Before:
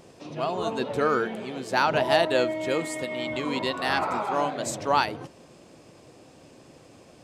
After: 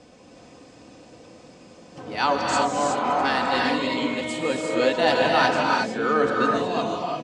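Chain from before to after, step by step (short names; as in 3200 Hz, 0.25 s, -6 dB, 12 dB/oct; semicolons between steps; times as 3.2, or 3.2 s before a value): whole clip reversed; LPF 8000 Hz 24 dB/oct; comb 4 ms, depth 41%; non-linear reverb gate 0.39 s rising, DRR -1 dB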